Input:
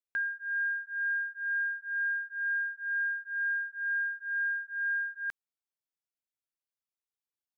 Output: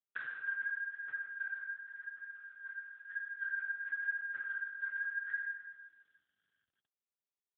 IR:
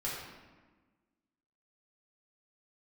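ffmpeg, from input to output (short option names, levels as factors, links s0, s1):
-filter_complex "[0:a]highpass=1300,agate=range=0.0355:threshold=0.00794:ratio=16:detection=peak,aecho=1:1:2.1:0.64,acompressor=threshold=0.00447:ratio=16,asettb=1/sr,asplit=3[s0][s1][s2];[s0]atrim=end=0.644[s3];[s1]atrim=start=0.64:end=3.26,asetpts=PTS-STARTPTS,afade=t=in:d=0.004:c=qsin,afade=t=out:st=2.616:d=0.004:c=qsin,tremolo=f=2.4:d=0.72[s4];[s2]atrim=start=3.256[s5];[s3][s4]acrossfade=d=0.004:c1=hsin:c2=qsin[s6];[s6][s5]acrossfade=d=0.004:c1=qsin:c2=hsin,aphaser=in_gain=1:out_gain=1:delay=2.1:decay=0.7:speed=0.92:type=triangular,aeval=exprs='0.0299*(cos(1*acos(clip(val(0)/0.0299,-1,1)))-cos(1*PI/2))+0.0075*(cos(3*acos(clip(val(0)/0.0299,-1,1)))-cos(3*PI/2))':c=same,aeval=exprs='(mod(75*val(0)+1,2)-1)/75':c=same,aecho=1:1:151|302|453|604:0.237|0.0901|0.0342|0.013[s7];[1:a]atrim=start_sample=2205[s8];[s7][s8]afir=irnorm=-1:irlink=0,volume=5.31" -ar 8000 -c:a libopencore_amrnb -b:a 7950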